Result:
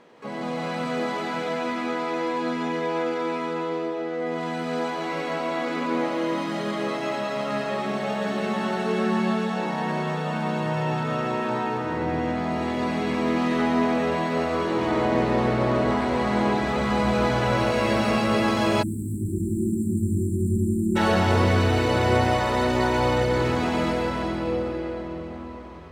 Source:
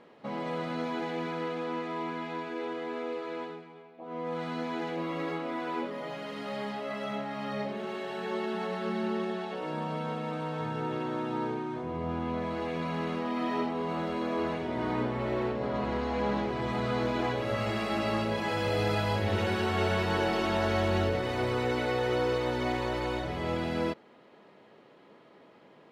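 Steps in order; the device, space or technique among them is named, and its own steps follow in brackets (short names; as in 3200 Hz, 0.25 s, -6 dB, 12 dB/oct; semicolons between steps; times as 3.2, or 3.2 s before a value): shimmer-style reverb (harmoniser +12 st -8 dB; reverb RT60 5.4 s, pre-delay 0.104 s, DRR -4 dB); spectral delete 18.82–20.96, 400–7100 Hz; gain +2 dB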